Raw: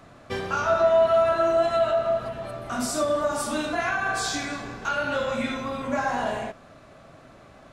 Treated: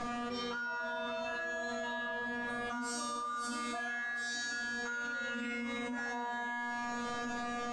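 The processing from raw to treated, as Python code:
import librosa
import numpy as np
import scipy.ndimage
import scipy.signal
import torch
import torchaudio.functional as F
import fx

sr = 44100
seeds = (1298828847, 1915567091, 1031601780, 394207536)

p1 = scipy.signal.sosfilt(scipy.signal.butter(4, 8200.0, 'lowpass', fs=sr, output='sos'), x)
p2 = fx.comb_fb(p1, sr, f0_hz=240.0, decay_s=1.0, harmonics='all', damping=0.0, mix_pct=100)
p3 = p2 + fx.echo_wet_highpass(p2, sr, ms=394, feedback_pct=72, hz=3800.0, wet_db=-22.5, dry=0)
y = fx.env_flatten(p3, sr, amount_pct=100)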